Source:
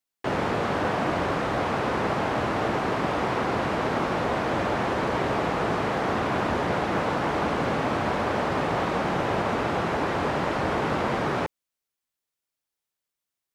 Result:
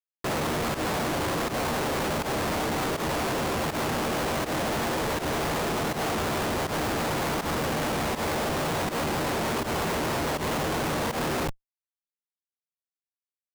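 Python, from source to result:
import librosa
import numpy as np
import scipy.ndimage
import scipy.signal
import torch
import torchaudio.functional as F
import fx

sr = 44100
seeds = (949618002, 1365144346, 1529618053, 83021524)

y = fx.room_early_taps(x, sr, ms=(13, 38), db=(-7.0, -11.5))
y = fx.schmitt(y, sr, flips_db=-32.0)
y = fx.volume_shaper(y, sr, bpm=81, per_beat=1, depth_db=-14, release_ms=90.0, shape='fast start')
y = F.gain(torch.from_numpy(y), -2.0).numpy()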